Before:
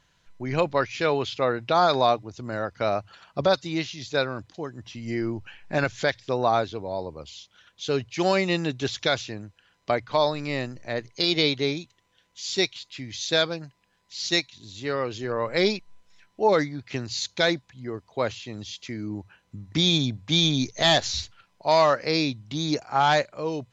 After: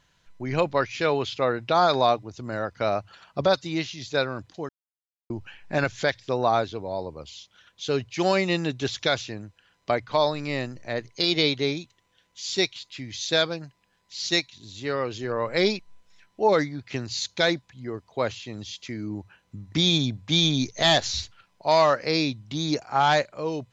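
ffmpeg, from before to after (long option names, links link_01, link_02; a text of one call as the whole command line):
ffmpeg -i in.wav -filter_complex "[0:a]asplit=3[link_01][link_02][link_03];[link_01]atrim=end=4.69,asetpts=PTS-STARTPTS,afade=type=out:start_time=4.686:duration=0.004:curve=hsin[link_04];[link_02]atrim=start=4.69:end=5.3,asetpts=PTS-STARTPTS,volume=0[link_05];[link_03]atrim=start=5.3,asetpts=PTS-STARTPTS,afade=type=in:duration=0.004:curve=hsin[link_06];[link_04][link_05][link_06]concat=n=3:v=0:a=1" out.wav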